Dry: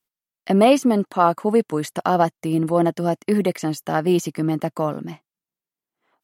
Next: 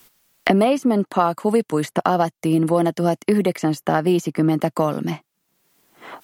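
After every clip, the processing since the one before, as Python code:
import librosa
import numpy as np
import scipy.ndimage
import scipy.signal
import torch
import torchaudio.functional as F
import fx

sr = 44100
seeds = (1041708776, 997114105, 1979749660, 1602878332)

y = fx.band_squash(x, sr, depth_pct=100)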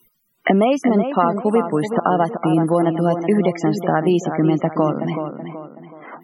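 y = fx.echo_tape(x, sr, ms=376, feedback_pct=43, wet_db=-7.0, lp_hz=3000.0, drive_db=1.0, wow_cents=8)
y = fx.spec_topn(y, sr, count=64)
y = y * 10.0 ** (1.0 / 20.0)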